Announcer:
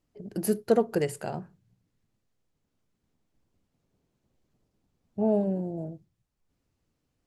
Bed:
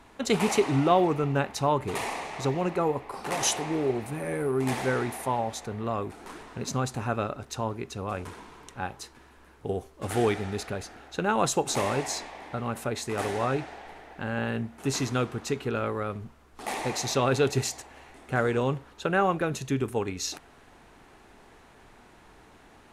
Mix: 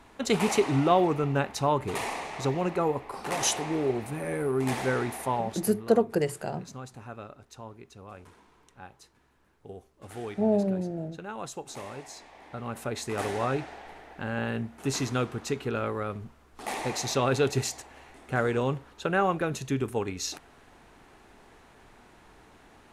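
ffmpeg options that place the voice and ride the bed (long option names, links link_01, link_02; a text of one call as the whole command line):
ffmpeg -i stem1.wav -i stem2.wav -filter_complex "[0:a]adelay=5200,volume=0.5dB[link_01];[1:a]volume=11.5dB,afade=type=out:start_time=5.34:duration=0.58:silence=0.237137,afade=type=in:start_time=12.15:duration=0.91:silence=0.251189[link_02];[link_01][link_02]amix=inputs=2:normalize=0" out.wav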